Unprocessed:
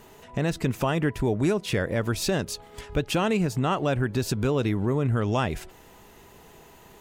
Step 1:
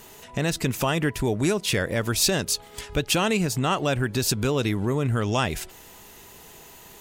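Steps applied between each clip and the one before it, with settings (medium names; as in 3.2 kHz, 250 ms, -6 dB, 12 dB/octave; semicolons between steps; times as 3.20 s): treble shelf 2.6 kHz +11 dB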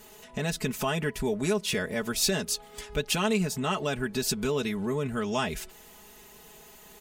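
comb 4.7 ms, depth 76%; trim -6.5 dB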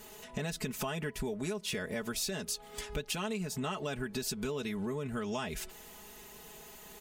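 compression, threshold -33 dBFS, peak gain reduction 11.5 dB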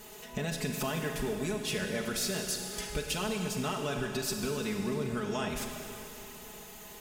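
Schroeder reverb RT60 2.9 s, combs from 33 ms, DRR 3 dB; trim +1.5 dB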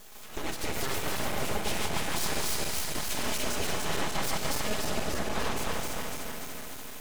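backward echo that repeats 147 ms, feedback 79%, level -1 dB; full-wave rectifier; trim +1 dB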